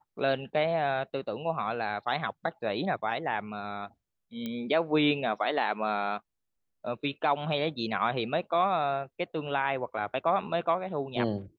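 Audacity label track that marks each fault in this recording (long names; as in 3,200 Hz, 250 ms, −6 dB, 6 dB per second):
4.460000	4.460000	click −22 dBFS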